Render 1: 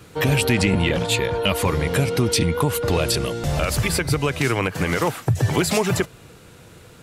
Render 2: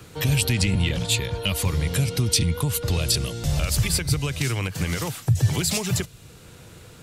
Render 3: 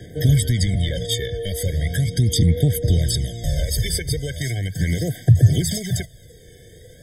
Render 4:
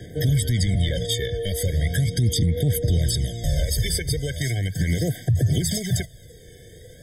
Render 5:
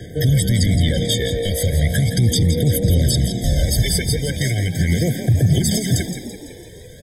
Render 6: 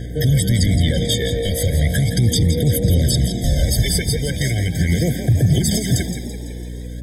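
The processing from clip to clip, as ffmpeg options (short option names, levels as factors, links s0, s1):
-filter_complex "[0:a]equalizer=f=11000:w=5.3:g=-2.5,acrossover=split=160|3000[s0][s1][s2];[s1]acompressor=threshold=0.00158:ratio=1.5[s3];[s0][s3][s2]amix=inputs=3:normalize=0,volume=1.26"
-af "aphaser=in_gain=1:out_gain=1:delay=2.3:decay=0.57:speed=0.38:type=sinusoidal,afftfilt=real='re*eq(mod(floor(b*sr/1024/760),2),0)':imag='im*eq(mod(floor(b*sr/1024/760),2),0)':win_size=1024:overlap=0.75"
-af "alimiter=limit=0.237:level=0:latency=1:release=79"
-filter_complex "[0:a]asplit=7[s0][s1][s2][s3][s4][s5][s6];[s1]adelay=167,afreqshift=57,volume=0.316[s7];[s2]adelay=334,afreqshift=114,volume=0.17[s8];[s3]adelay=501,afreqshift=171,volume=0.0923[s9];[s4]adelay=668,afreqshift=228,volume=0.0495[s10];[s5]adelay=835,afreqshift=285,volume=0.0269[s11];[s6]adelay=1002,afreqshift=342,volume=0.0145[s12];[s0][s7][s8][s9][s10][s11][s12]amix=inputs=7:normalize=0,volume=1.68"
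-af "aeval=exprs='val(0)+0.0398*(sin(2*PI*60*n/s)+sin(2*PI*2*60*n/s)/2+sin(2*PI*3*60*n/s)/3+sin(2*PI*4*60*n/s)/4+sin(2*PI*5*60*n/s)/5)':c=same"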